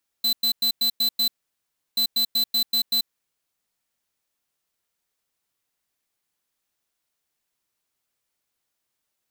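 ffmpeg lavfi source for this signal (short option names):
-f lavfi -i "aevalsrc='0.0891*(2*lt(mod(4030*t,1),0.5)-1)*clip(min(mod(mod(t,1.73),0.19),0.09-mod(mod(t,1.73),0.19))/0.005,0,1)*lt(mod(t,1.73),1.14)':d=3.46:s=44100"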